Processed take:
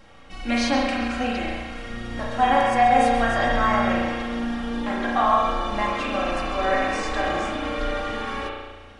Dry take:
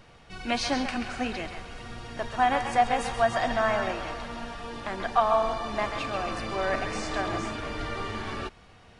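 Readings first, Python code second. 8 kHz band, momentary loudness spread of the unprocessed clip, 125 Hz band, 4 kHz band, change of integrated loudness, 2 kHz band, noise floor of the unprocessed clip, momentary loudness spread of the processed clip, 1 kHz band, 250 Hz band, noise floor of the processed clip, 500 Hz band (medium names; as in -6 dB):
+2.0 dB, 13 LU, +4.0 dB, +4.0 dB, +5.5 dB, +6.0 dB, -53 dBFS, 12 LU, +6.0 dB, +8.5 dB, -44 dBFS, +4.0 dB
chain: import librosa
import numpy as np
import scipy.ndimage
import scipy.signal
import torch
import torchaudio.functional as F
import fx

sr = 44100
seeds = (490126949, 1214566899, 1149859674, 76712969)

y = x + 0.66 * np.pad(x, (int(3.7 * sr / 1000.0), 0))[:len(x)]
y = fx.rev_spring(y, sr, rt60_s=1.3, pass_ms=(34,), chirp_ms=45, drr_db=-2.5)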